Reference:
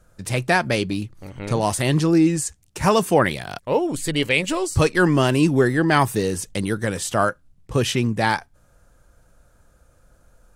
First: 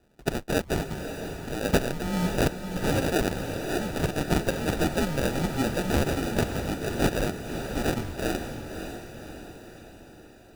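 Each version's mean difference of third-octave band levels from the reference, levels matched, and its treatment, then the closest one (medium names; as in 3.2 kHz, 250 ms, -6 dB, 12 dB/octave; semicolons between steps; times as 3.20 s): 12.0 dB: RIAA curve recording; frequency shift -140 Hz; sample-and-hold 41×; on a send: echo that smears into a reverb 561 ms, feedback 54%, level -7.5 dB; on the sum: trim -7 dB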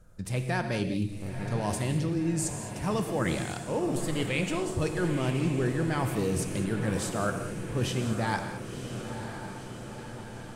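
7.5 dB: bass shelf 360 Hz +7 dB; reverse; compression, threshold -21 dBFS, peak gain reduction 13 dB; reverse; echo that smears into a reverb 1010 ms, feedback 64%, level -9 dB; gated-style reverb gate 240 ms flat, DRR 6.5 dB; trim -6 dB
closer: second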